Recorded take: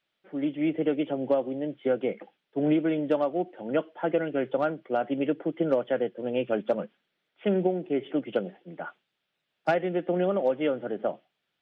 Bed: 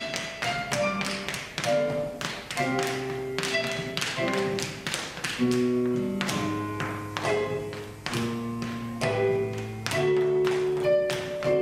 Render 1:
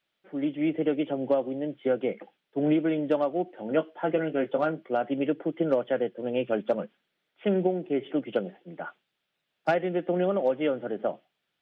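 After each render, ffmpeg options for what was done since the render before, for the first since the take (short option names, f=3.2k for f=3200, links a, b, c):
-filter_complex "[0:a]asettb=1/sr,asplit=3[a][b][c];[a]atrim=end=3.554[d];[b]atrim=start=3.55:end=4.91,asetpts=PTS-STARTPTS,afade=t=in:d=0.004:c=qsin,afade=t=out:st=1.356:d=0.004:c=qsin,asplit=2[e][f];[f]adelay=19,volume=-8.5dB[g];[e][g]amix=inputs=2:normalize=0,atrim=end_sample=59976[h];[c]atrim=start=4.906[i];[d][h]acrossfade=d=0.004:c1=hsin:c2=qsin[j];[j][i]acrossfade=d=0.004:c1=qsin:c2=hsin"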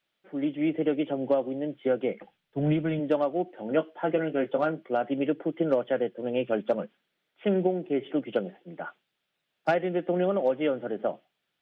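-filter_complex "[0:a]asplit=3[a][b][c];[a]afade=t=out:st=2.19:d=0.02[d];[b]asubboost=boost=10:cutoff=120,afade=t=in:st=2.19:d=0.02,afade=t=out:st=2.99:d=0.02[e];[c]afade=t=in:st=2.99:d=0.02[f];[d][e][f]amix=inputs=3:normalize=0"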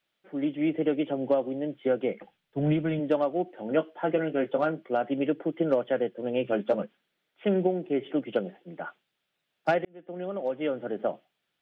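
-filter_complex "[0:a]asettb=1/sr,asplit=3[a][b][c];[a]atrim=end=6.434[d];[b]atrim=start=6.43:end=6.83,asetpts=PTS-STARTPTS,afade=t=in:d=0.004:c=qsin,afade=t=out:st=0.396:d=0.004:c=qsin,asplit=2[e][f];[f]adelay=15,volume=-6.5dB[g];[e][g]amix=inputs=2:normalize=0,atrim=end_sample=17640[h];[c]atrim=start=6.826[i];[d][h]acrossfade=d=0.004:c1=hsin:c2=qsin[j];[j][i]acrossfade=d=0.004:c1=qsin:c2=hsin,asplit=2[k][l];[k]atrim=end=9.85,asetpts=PTS-STARTPTS,afade=t=out:st=9.846:d=0.004:c=hsin[m];[l]atrim=start=9.85,asetpts=PTS-STARTPTS,afade=t=in:d=1.11[n];[m][n]concat=n=2:v=0:a=1"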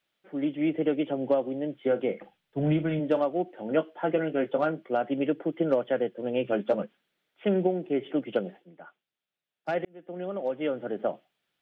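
-filter_complex "[0:a]asettb=1/sr,asplit=3[a][b][c];[a]atrim=end=1.804[d];[b]atrim=start=1.8:end=3.25,asetpts=PTS-STARTPTS,afade=t=in:d=0.004:c=qsin,afade=t=out:st=1.446:d=0.004:c=qsin,asplit=2[e][f];[f]adelay=45,volume=-13.5dB[g];[e][g]amix=inputs=2:normalize=0,atrim=end_sample=63945[h];[c]atrim=start=3.246[i];[d][h]acrossfade=d=0.004:c1=hsin:c2=qsin[j];[j][i]acrossfade=d=0.004:c1=qsin:c2=hsin,asplit=3[k][l][m];[k]atrim=end=8.75,asetpts=PTS-STARTPTS,afade=t=out:st=8.57:d=0.18:c=qua:silence=0.281838[n];[l]atrim=start=8.75:end=9.61,asetpts=PTS-STARTPTS,volume=-11dB[o];[m]atrim=start=9.61,asetpts=PTS-STARTPTS,afade=t=in:d=0.18:c=qua:silence=0.281838[p];[n][o][p]concat=n=3:v=0:a=1"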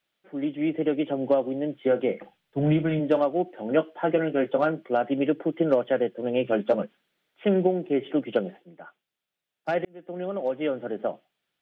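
-af "dynaudnorm=f=180:g=11:m=3dB"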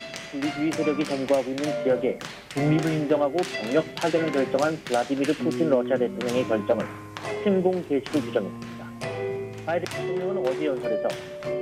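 -filter_complex "[1:a]volume=-5dB[a];[0:a][a]amix=inputs=2:normalize=0"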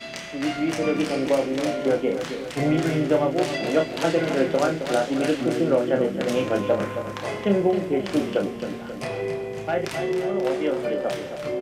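-filter_complex "[0:a]asplit=2[a][b];[b]adelay=30,volume=-5.5dB[c];[a][c]amix=inputs=2:normalize=0,aecho=1:1:268|536|804|1072|1340|1608|1876:0.355|0.199|0.111|0.0623|0.0349|0.0195|0.0109"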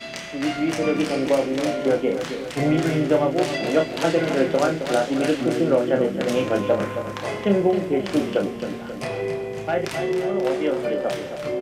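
-af "volume=1.5dB"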